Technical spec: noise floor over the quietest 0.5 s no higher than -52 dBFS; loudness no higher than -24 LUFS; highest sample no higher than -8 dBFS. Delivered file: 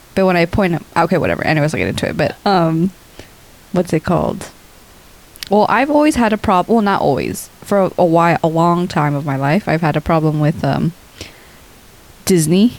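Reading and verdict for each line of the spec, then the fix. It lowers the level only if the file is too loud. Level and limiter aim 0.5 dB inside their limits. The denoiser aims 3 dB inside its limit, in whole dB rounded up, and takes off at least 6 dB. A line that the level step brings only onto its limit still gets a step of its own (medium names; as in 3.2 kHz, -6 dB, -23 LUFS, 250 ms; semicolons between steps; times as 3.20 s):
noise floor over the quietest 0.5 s -43 dBFS: fail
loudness -15.0 LUFS: fail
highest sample -2.5 dBFS: fail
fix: trim -9.5 dB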